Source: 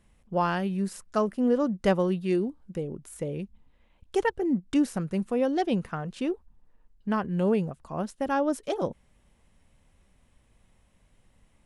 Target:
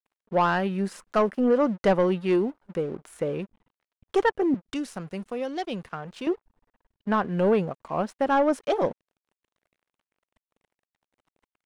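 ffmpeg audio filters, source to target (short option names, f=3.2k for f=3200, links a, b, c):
-filter_complex "[0:a]asettb=1/sr,asplit=3[a][b][c];[a]atrim=end=4.544[d];[b]atrim=start=4.54:end=6.27,asetpts=PTS-STARTPTS,afade=t=in:d=0.004:c=qsin,afade=t=out:st=1.726:d=0.004:c=qsin,acrossover=split=130|3000[e][f][g];[f]acompressor=threshold=-54dB:ratio=1.5[h];[e][h][g]amix=inputs=3:normalize=0[i];[c]atrim=start=6.266[j];[d][i]acrossfade=d=0.004:c1=hsin:c2=qsin[k];[k][j]acrossfade=d=0.004:c1=qsin:c2=hsin,aeval=exprs='sgn(val(0))*max(abs(val(0))-0.00178,0)':c=same,asplit=2[l][m];[m]highpass=f=720:p=1,volume=17dB,asoftclip=type=tanh:threshold=-10.5dB[n];[l][n]amix=inputs=2:normalize=0,lowpass=f=1.7k:p=1,volume=-6dB"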